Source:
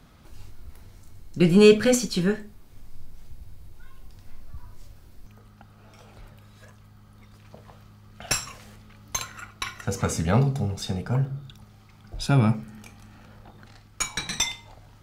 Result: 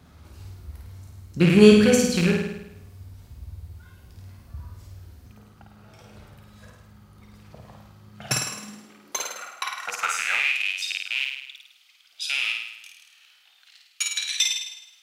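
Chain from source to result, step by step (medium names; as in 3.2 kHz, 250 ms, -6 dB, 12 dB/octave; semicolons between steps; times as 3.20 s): rattle on loud lows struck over -24 dBFS, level -16 dBFS; vibrato 2.5 Hz 13 cents; on a send: flutter echo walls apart 9 m, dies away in 0.84 s; on the sum: high-pass sweep 74 Hz -> 2.9 kHz, 7.90–10.70 s; trim -1 dB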